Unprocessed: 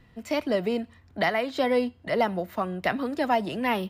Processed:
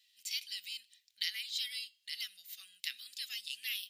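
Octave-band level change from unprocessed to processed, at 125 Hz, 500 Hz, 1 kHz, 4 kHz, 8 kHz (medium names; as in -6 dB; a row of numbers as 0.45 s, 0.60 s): under -40 dB, under -40 dB, under -40 dB, +1.5 dB, no reading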